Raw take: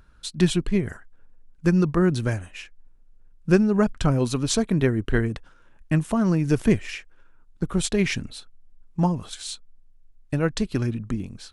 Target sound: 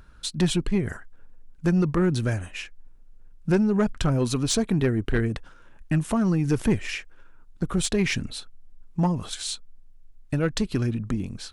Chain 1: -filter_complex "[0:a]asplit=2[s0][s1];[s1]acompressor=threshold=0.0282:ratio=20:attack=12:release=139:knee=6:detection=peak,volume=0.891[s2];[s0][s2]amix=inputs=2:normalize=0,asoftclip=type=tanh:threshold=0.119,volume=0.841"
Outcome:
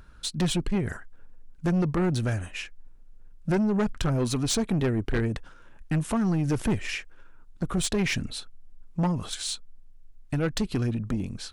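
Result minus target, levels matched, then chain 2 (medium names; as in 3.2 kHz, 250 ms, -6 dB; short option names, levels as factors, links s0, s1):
saturation: distortion +7 dB
-filter_complex "[0:a]asplit=2[s0][s1];[s1]acompressor=threshold=0.0282:ratio=20:attack=12:release=139:knee=6:detection=peak,volume=0.891[s2];[s0][s2]amix=inputs=2:normalize=0,asoftclip=type=tanh:threshold=0.251,volume=0.841"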